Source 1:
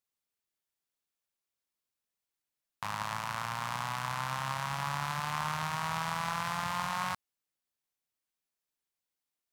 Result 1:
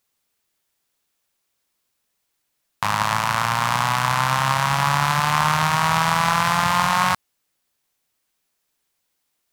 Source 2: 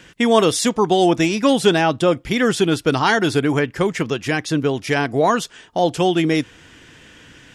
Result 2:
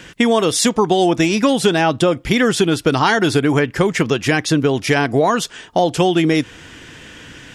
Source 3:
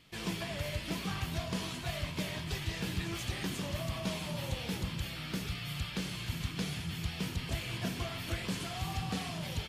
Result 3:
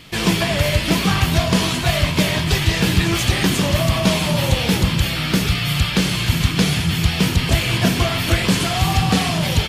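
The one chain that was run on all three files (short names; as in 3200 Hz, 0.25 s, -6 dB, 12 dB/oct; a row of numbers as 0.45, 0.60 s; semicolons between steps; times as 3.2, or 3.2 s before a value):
compressor, threshold -18 dBFS; normalise peaks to -2 dBFS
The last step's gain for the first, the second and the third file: +15.0, +7.0, +19.5 dB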